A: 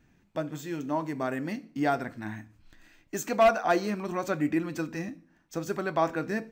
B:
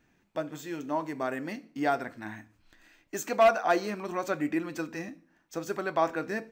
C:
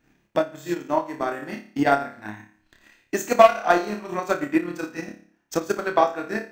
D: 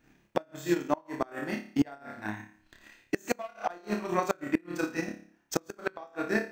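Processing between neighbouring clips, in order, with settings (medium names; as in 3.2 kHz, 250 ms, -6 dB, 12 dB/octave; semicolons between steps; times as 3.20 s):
tone controls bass -8 dB, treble -1 dB
flutter echo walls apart 4.9 m, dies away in 0.57 s; transient shaper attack +12 dB, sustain -6 dB
inverted gate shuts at -13 dBFS, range -27 dB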